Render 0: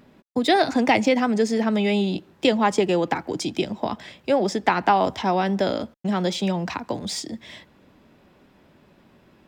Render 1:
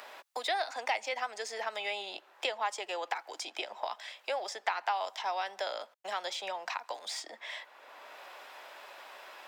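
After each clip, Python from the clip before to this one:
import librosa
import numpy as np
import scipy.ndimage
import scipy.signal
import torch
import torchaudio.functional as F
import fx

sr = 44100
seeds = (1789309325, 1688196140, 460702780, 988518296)

y = scipy.signal.sosfilt(scipy.signal.butter(4, 660.0, 'highpass', fs=sr, output='sos'), x)
y = fx.band_squash(y, sr, depth_pct=70)
y = y * 10.0 ** (-8.0 / 20.0)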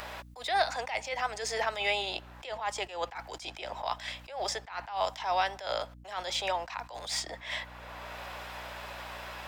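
y = fx.add_hum(x, sr, base_hz=60, snr_db=20)
y = fx.attack_slew(y, sr, db_per_s=120.0)
y = y * 10.0 ** (7.0 / 20.0)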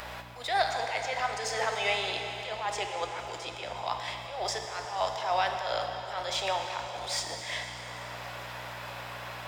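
y = fx.rev_plate(x, sr, seeds[0], rt60_s=4.2, hf_ratio=0.85, predelay_ms=0, drr_db=3.0)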